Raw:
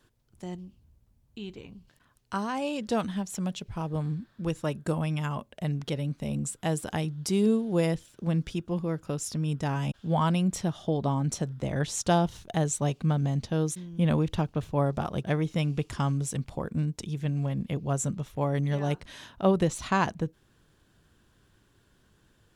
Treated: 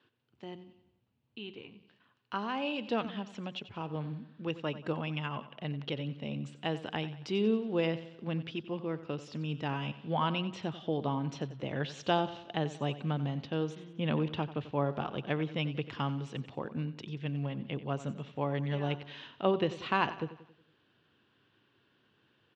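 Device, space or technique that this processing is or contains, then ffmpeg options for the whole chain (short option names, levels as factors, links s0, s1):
guitar cabinet: -af "highpass=120,highpass=110,equalizer=f=180:t=q:w=4:g=-7,equalizer=f=630:t=q:w=4:g=-3,equalizer=f=2800:t=q:w=4:g=7,lowpass=f=4100:w=0.5412,lowpass=f=4100:w=1.3066,aecho=1:1:91|182|273|364|455:0.188|0.0923|0.0452|0.0222|0.0109,volume=0.708"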